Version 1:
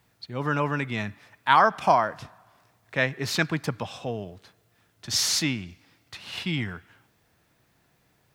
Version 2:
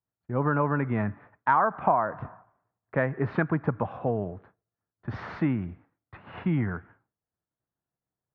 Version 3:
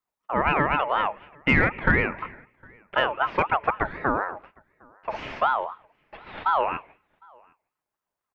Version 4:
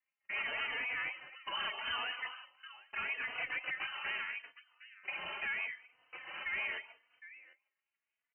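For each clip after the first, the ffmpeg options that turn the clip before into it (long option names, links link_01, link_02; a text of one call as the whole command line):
ffmpeg -i in.wav -af "lowpass=frequency=1500:width=0.5412,lowpass=frequency=1500:width=1.3066,agate=range=-33dB:threshold=-49dB:ratio=3:detection=peak,acompressor=threshold=-27dB:ratio=3,volume=5.5dB" out.wav
ffmpeg -i in.wav -filter_complex "[0:a]aeval=exprs='0.335*(cos(1*acos(clip(val(0)/0.335,-1,1)))-cos(1*PI/2))+0.00841*(cos(4*acos(clip(val(0)/0.335,-1,1)))-cos(4*PI/2))+0.00841*(cos(5*acos(clip(val(0)/0.335,-1,1)))-cos(5*PI/2))':channel_layout=same,asplit=2[link_01][link_02];[link_02]adelay=758,volume=-29dB,highshelf=frequency=4000:gain=-17.1[link_03];[link_01][link_03]amix=inputs=2:normalize=0,aeval=exprs='val(0)*sin(2*PI*950*n/s+950*0.25/4*sin(2*PI*4*n/s))':channel_layout=same,volume=5dB" out.wav
ffmpeg -i in.wav -filter_complex "[0:a]aeval=exprs='(tanh(39.8*val(0)+0.05)-tanh(0.05))/39.8':channel_layout=same,lowpass=frequency=2600:width_type=q:width=0.5098,lowpass=frequency=2600:width_type=q:width=0.6013,lowpass=frequency=2600:width_type=q:width=0.9,lowpass=frequency=2600:width_type=q:width=2.563,afreqshift=-3100,asplit=2[link_01][link_02];[link_02]adelay=3.4,afreqshift=0.8[link_03];[link_01][link_03]amix=inputs=2:normalize=1" out.wav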